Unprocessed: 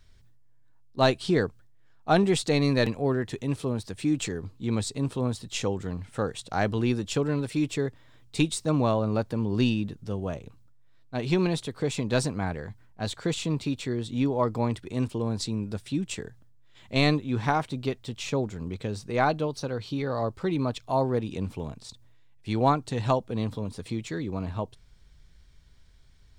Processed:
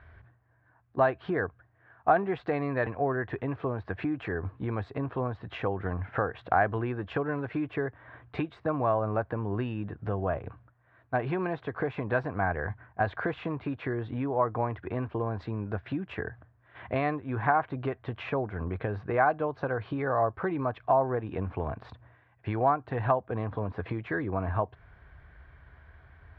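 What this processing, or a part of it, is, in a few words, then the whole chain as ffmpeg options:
bass amplifier: -af "acompressor=threshold=-37dB:ratio=4,highpass=70,equalizer=frequency=79:width_type=q:width=4:gain=6,equalizer=frequency=160:width_type=q:width=4:gain=-6,equalizer=frequency=230:width_type=q:width=4:gain=-7,equalizer=frequency=710:width_type=q:width=4:gain=9,equalizer=frequency=1100:width_type=q:width=4:gain=6,equalizer=frequency=1600:width_type=q:width=4:gain=9,lowpass=frequency=2200:width=0.5412,lowpass=frequency=2200:width=1.3066,volume=8.5dB"

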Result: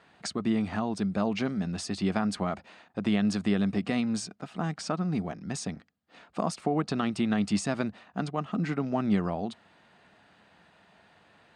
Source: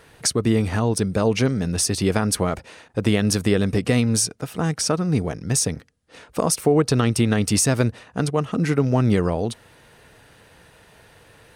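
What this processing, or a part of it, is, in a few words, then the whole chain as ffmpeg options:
car door speaker: -af "highpass=110,equalizer=frequency=120:width_type=q:width=4:gain=-10,equalizer=frequency=200:width_type=q:width=4:gain=7,equalizer=frequency=470:width_type=q:width=4:gain=-8,equalizer=frequency=720:width_type=q:width=4:gain=6,equalizer=frequency=1200:width_type=q:width=4:gain=3,equalizer=frequency=5800:width_type=q:width=4:gain=-9,lowpass=frequency=6700:width=0.5412,lowpass=frequency=6700:width=1.3066,volume=-8.5dB"

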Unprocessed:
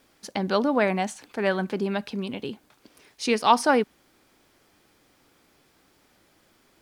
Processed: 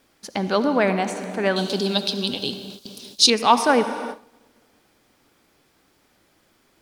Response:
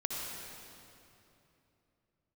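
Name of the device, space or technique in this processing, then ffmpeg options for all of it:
keyed gated reverb: -filter_complex "[0:a]asplit=3[link_01][link_02][link_03];[1:a]atrim=start_sample=2205[link_04];[link_02][link_04]afir=irnorm=-1:irlink=0[link_05];[link_03]apad=whole_len=300448[link_06];[link_05][link_06]sidechaingate=range=-33dB:threshold=-58dB:ratio=16:detection=peak,volume=-8.5dB[link_07];[link_01][link_07]amix=inputs=2:normalize=0,asettb=1/sr,asplit=3[link_08][link_09][link_10];[link_08]atrim=end=1.564[link_11];[link_09]atrim=start=1.56:end=3.3,asetpts=PTS-STARTPTS,afade=type=in:duration=0.004:curve=qsin,afade=type=out:start_time=1.736:duration=0.004:curve=qsin,highshelf=frequency=2800:width_type=q:width=3:gain=11.5[link_12];[link_10]atrim=start=3.296[link_13];[link_11][link_12]acrossfade=duration=0.004:curve1=hsin:curve2=qsin[link_14];[link_14][link_13]acrossfade=duration=0.004:curve1=qsin:curve2=hsin"

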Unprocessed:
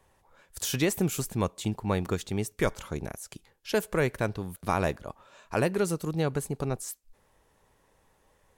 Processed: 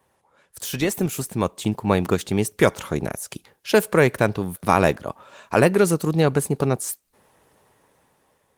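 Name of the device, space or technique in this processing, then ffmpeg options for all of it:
video call: -af "highpass=110,dynaudnorm=framelen=630:gausssize=5:maxgain=9.5dB,volume=2dB" -ar 48000 -c:a libopus -b:a 24k

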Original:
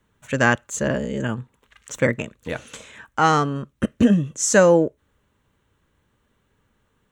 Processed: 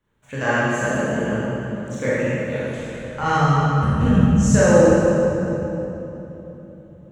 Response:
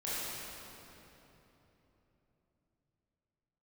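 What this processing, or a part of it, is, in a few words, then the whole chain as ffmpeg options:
swimming-pool hall: -filter_complex "[0:a]asplit=3[link_01][link_02][link_03];[link_01]afade=type=out:start_time=2.67:duration=0.02[link_04];[link_02]asubboost=boost=11.5:cutoff=100,afade=type=in:start_time=2.67:duration=0.02,afade=type=out:start_time=4.39:duration=0.02[link_05];[link_03]afade=type=in:start_time=4.39:duration=0.02[link_06];[link_04][link_05][link_06]amix=inputs=3:normalize=0[link_07];[1:a]atrim=start_sample=2205[link_08];[link_07][link_08]afir=irnorm=-1:irlink=0,highshelf=frequency=4800:gain=-5,volume=-4dB"

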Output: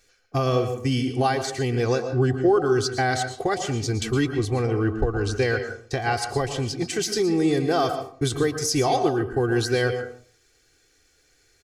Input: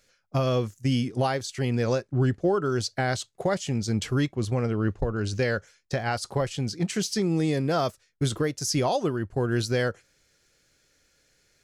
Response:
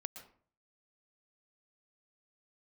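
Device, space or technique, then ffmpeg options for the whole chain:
microphone above a desk: -filter_complex "[0:a]aecho=1:1:2.6:0.72[link_01];[1:a]atrim=start_sample=2205[link_02];[link_01][link_02]afir=irnorm=-1:irlink=0,volume=5dB"

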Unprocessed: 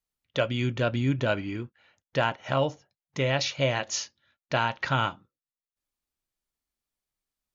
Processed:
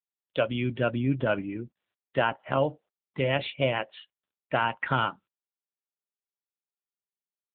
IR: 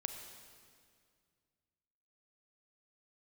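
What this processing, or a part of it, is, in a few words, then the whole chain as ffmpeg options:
mobile call with aggressive noise cancelling: -filter_complex "[0:a]asettb=1/sr,asplit=3[link_01][link_02][link_03];[link_01]atrim=end=4.634[link_04];[link_02]atrim=start=4.63:end=5.03,asetpts=PTS-STARTPTS,afade=type=in:duration=0.004:curve=qsin,afade=type=out:start_time=0.396:duration=0.004:curve=qsin,deesser=0.25[link_05];[link_03]atrim=start=5.026[link_06];[link_04][link_05]acrossfade=duration=0.004:curve1=hsin:curve2=qsin[link_07];[link_07][link_06]acrossfade=duration=0.004:curve1=qsin:curve2=hsin,highpass=130,afftdn=noise_reduction=35:noise_floor=-39,volume=1dB" -ar 8000 -c:a libopencore_amrnb -b:a 7950

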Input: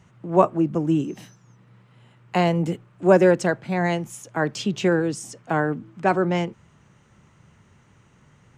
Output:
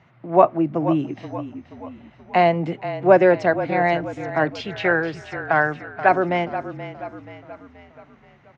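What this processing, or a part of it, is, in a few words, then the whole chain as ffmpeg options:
frequency-shifting delay pedal into a guitar cabinet: -filter_complex "[0:a]asplit=6[link_01][link_02][link_03][link_04][link_05][link_06];[link_02]adelay=479,afreqshift=-32,volume=-12dB[link_07];[link_03]adelay=958,afreqshift=-64,volume=-17.7dB[link_08];[link_04]adelay=1437,afreqshift=-96,volume=-23.4dB[link_09];[link_05]adelay=1916,afreqshift=-128,volume=-29dB[link_10];[link_06]adelay=2395,afreqshift=-160,volume=-34.7dB[link_11];[link_01][link_07][link_08][link_09][link_10][link_11]amix=inputs=6:normalize=0,highpass=100,equalizer=frequency=100:width_type=q:width=4:gain=-5,equalizer=frequency=190:width_type=q:width=4:gain=-7,equalizer=frequency=430:width_type=q:width=4:gain=-4,equalizer=frequency=690:width_type=q:width=4:gain=7,equalizer=frequency=2100:width_type=q:width=4:gain=5,equalizer=frequency=3100:width_type=q:width=4:gain=-3,lowpass=frequency=4300:width=0.5412,lowpass=frequency=4300:width=1.3066,asettb=1/sr,asplit=3[link_12][link_13][link_14];[link_12]atrim=end=4.664[link_15];[link_13]atrim=start=4.66:end=6.09,asetpts=PTS-STARTPTS,afade=type=in:duration=0.004:curve=qsin,afade=type=out:start_time=1.426:duration=0.004:curve=qsin,equalizer=frequency=250:width_type=o:width=0.67:gain=-11,equalizer=frequency=1600:width_type=o:width=0.67:gain=7,equalizer=frequency=6300:width_type=o:width=0.67:gain=-3[link_16];[link_14]atrim=start=6.086[link_17];[link_15][link_16]acrossfade=duration=0.004:curve1=hsin:curve2=qsin[link_18];[link_18][link_17]acrossfade=duration=0.004:curve1=qsin:curve2=hsin,volume=1.5dB"

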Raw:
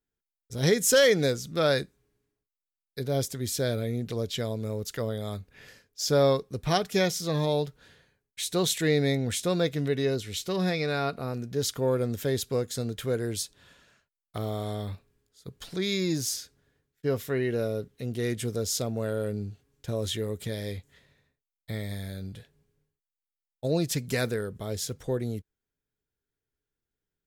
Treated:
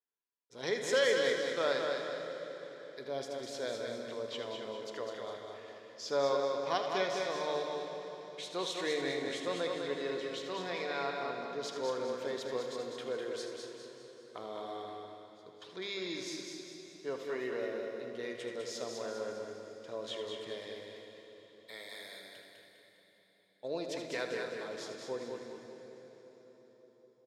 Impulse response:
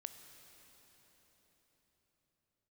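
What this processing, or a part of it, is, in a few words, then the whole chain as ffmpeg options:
station announcement: -filter_complex "[0:a]asettb=1/sr,asplit=3[link_01][link_02][link_03];[link_01]atrim=end=20.764[link_04];[link_02]atrim=start=20.76:end=22.36,asetpts=PTS-STARTPTS,afade=type=in:duration=0.004:curve=qsin,afade=type=out:start_time=1.596:duration=0.004:curve=qsin,aemphasis=mode=production:type=riaa[link_05];[link_03]atrim=start=22.356[link_06];[link_04][link_05]acrossfade=duration=0.004:curve1=hsin:curve2=qsin[link_07];[link_07][link_06]acrossfade=duration=0.004:curve1=qsin:curve2=hsin,highpass=410,lowpass=4300,equalizer=frequency=1000:width_type=o:width=0.21:gain=9,bandreject=frequency=50:width_type=h:width=6,bandreject=frequency=100:width_type=h:width=6,bandreject=frequency=150:width_type=h:width=6,bandreject=frequency=200:width_type=h:width=6,aecho=1:1:78.72|233.2:0.316|0.251[link_08];[1:a]atrim=start_sample=2205[link_09];[link_08][link_09]afir=irnorm=-1:irlink=0,aecho=1:1:202|404|606|808|1010:0.562|0.247|0.109|0.0479|0.0211,volume=-2.5dB"

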